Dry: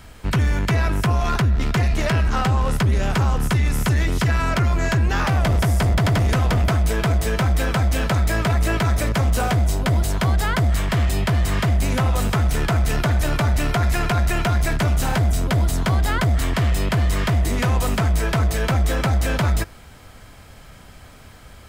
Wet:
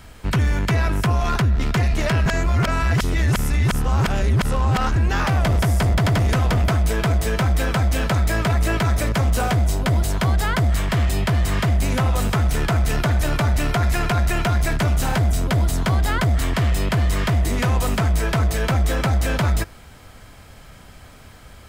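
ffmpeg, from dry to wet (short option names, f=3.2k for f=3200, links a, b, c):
-filter_complex "[0:a]asplit=3[a][b][c];[a]atrim=end=2.262[d];[b]atrim=start=2.258:end=4.962,asetpts=PTS-STARTPTS,areverse[e];[c]atrim=start=4.958[f];[d][e]acrossfade=d=0.004:c1=hsin:c2=hsin[g];[g][f]acrossfade=d=0.004:c1=hsin:c2=hsin"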